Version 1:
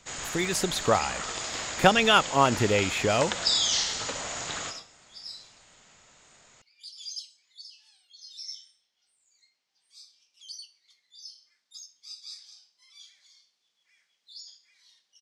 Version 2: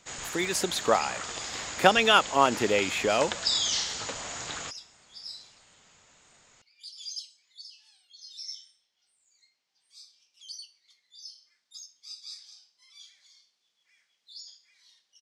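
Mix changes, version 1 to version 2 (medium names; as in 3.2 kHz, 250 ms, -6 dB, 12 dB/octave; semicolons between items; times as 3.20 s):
speech: add high-pass 240 Hz 12 dB/octave; reverb: off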